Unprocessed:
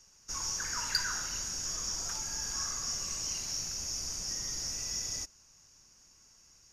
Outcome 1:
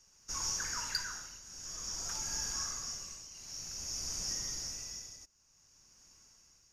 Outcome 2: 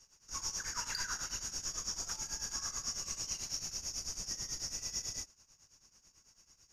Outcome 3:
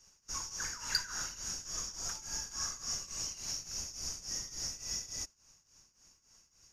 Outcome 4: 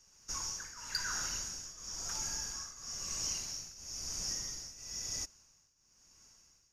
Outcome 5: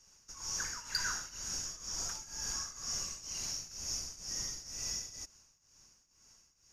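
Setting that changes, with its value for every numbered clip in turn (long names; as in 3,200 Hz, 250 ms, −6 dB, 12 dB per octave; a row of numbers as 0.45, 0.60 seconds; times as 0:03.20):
shaped tremolo, speed: 0.53, 9.1, 3.5, 1, 2.1 Hertz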